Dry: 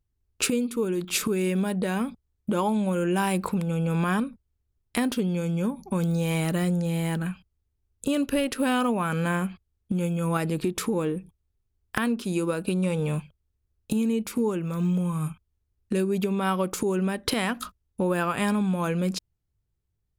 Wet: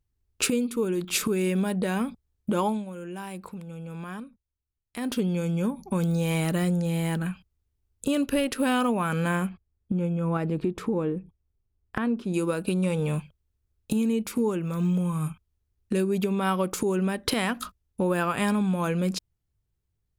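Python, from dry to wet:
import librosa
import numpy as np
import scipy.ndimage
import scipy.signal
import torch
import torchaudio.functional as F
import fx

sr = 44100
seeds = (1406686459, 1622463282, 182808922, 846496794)

y = fx.lowpass(x, sr, hz=1100.0, slope=6, at=(9.49, 12.34))
y = fx.edit(y, sr, fx.fade_down_up(start_s=2.66, length_s=2.49, db=-12.5, fade_s=0.19), tone=tone)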